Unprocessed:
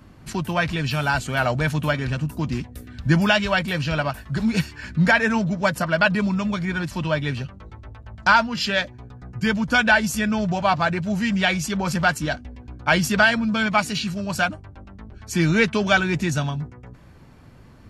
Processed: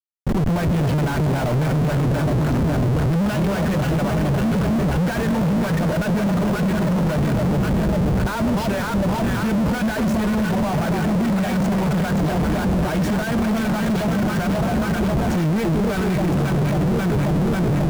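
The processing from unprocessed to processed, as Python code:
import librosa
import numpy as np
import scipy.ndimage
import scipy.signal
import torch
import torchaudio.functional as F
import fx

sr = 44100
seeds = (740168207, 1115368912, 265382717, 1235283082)

y = fx.high_shelf(x, sr, hz=6200.0, db=-5.0)
y = fx.echo_alternate(y, sr, ms=270, hz=860.0, feedback_pct=83, wet_db=-5.0)
y = fx.schmitt(y, sr, flips_db=-32.5)
y = fx.tilt_shelf(y, sr, db=7.0, hz=970.0)
y = y * librosa.db_to_amplitude(-3.0)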